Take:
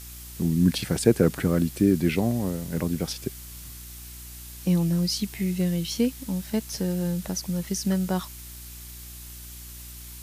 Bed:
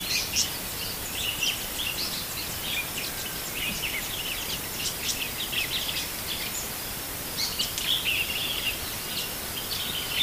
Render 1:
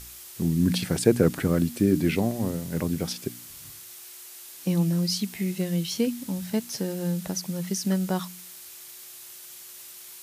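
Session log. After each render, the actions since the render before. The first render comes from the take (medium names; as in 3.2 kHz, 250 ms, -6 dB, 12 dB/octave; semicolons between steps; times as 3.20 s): de-hum 60 Hz, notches 5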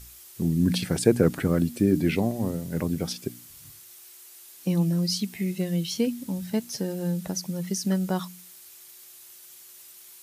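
noise reduction 6 dB, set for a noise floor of -45 dBFS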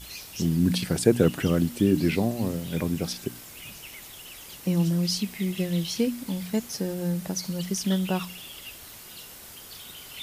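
add bed -14 dB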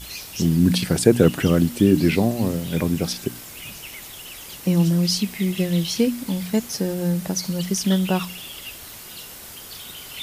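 trim +5.5 dB; peak limiter -1 dBFS, peak gain reduction 1 dB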